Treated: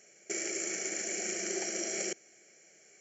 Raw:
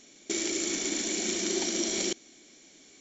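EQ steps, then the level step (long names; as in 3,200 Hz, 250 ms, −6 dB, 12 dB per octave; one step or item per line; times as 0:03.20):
high-pass filter 150 Hz 12 dB per octave
phaser with its sweep stopped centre 1,000 Hz, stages 6
0.0 dB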